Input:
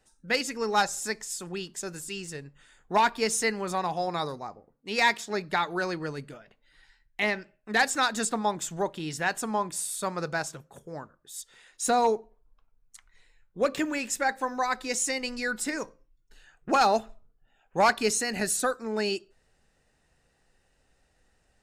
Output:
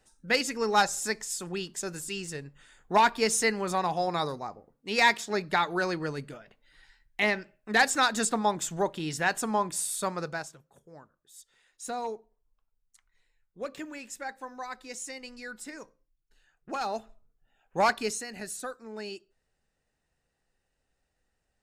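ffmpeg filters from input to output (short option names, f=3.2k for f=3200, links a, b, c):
-af "volume=10dB,afade=t=out:st=9.99:d=0.57:silence=0.251189,afade=t=in:st=16.81:d=1.03:silence=0.354813,afade=t=out:st=17.84:d=0.44:silence=0.375837"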